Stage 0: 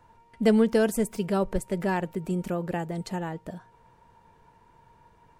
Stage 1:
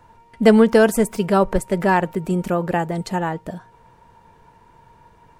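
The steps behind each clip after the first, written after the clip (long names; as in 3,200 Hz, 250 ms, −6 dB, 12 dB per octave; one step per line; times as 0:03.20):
dynamic equaliser 1,100 Hz, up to +6 dB, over −40 dBFS, Q 0.75
level +7 dB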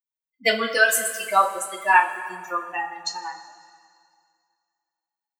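spectral dynamics exaggerated over time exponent 3
high-pass filter 1,200 Hz 12 dB per octave
convolution reverb, pre-delay 3 ms, DRR −2 dB
level +7 dB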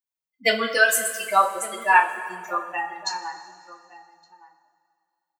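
slap from a distant wall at 200 metres, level −16 dB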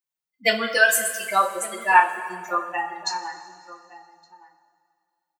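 comb filter 5.7 ms, depth 43%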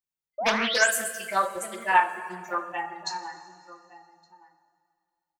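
low-shelf EQ 230 Hz +10.5 dB
sound drawn into the spectrogram rise, 0:00.38–0:00.91, 570–9,600 Hz −23 dBFS
highs frequency-modulated by the lows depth 0.35 ms
level −5.5 dB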